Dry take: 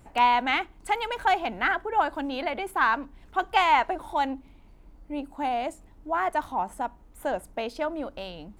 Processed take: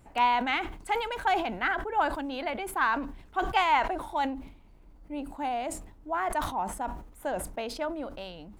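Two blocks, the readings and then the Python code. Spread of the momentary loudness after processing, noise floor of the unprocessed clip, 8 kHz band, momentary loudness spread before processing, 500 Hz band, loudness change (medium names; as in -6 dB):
13 LU, -53 dBFS, no reading, 13 LU, -2.5 dB, -3.0 dB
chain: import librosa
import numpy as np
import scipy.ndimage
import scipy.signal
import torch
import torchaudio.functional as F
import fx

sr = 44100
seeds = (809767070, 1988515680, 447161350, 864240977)

y = fx.sustainer(x, sr, db_per_s=79.0)
y = y * 10.0 ** (-3.5 / 20.0)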